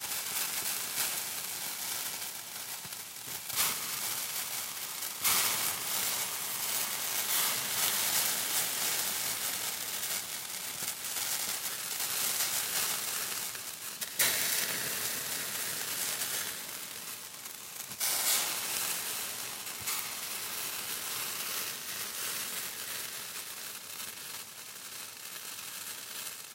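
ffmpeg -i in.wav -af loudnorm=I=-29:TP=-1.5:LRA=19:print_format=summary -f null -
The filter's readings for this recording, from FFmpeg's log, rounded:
Input Integrated:    -32.4 LUFS
Input True Peak:     -10.8 dBTP
Input LRA:            10.4 LU
Input Threshold:     -42.5 LUFS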